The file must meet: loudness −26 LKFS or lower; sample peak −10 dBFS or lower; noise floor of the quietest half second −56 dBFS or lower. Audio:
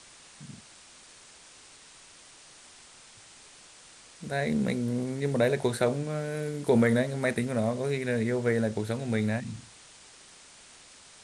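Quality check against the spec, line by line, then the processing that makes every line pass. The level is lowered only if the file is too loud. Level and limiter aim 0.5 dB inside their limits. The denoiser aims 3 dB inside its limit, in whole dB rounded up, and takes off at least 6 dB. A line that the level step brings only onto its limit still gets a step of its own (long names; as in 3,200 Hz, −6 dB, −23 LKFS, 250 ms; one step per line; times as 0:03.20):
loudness −28.5 LKFS: in spec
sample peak −11.0 dBFS: in spec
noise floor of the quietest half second −53 dBFS: out of spec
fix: broadband denoise 6 dB, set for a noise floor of −53 dBFS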